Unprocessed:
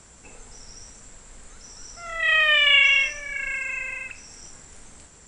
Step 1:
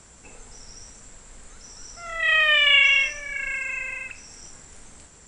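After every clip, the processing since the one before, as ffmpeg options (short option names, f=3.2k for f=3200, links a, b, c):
-af anull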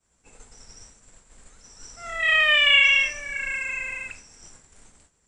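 -af "agate=range=-33dB:threshold=-38dB:ratio=3:detection=peak"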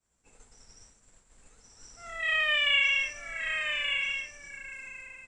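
-af "aecho=1:1:1178:0.501,volume=-8dB"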